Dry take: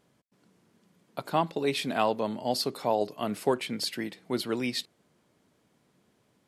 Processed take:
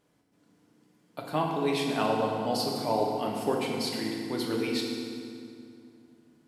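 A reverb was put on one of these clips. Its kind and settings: FDN reverb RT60 2.4 s, low-frequency decay 1.4×, high-frequency decay 0.75×, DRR -1.5 dB; gain -4 dB

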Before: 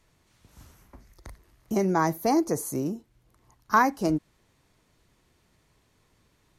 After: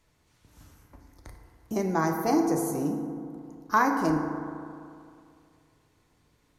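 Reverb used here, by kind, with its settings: FDN reverb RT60 2.4 s, low-frequency decay 1×, high-frequency decay 0.35×, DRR 3 dB; gain -3 dB

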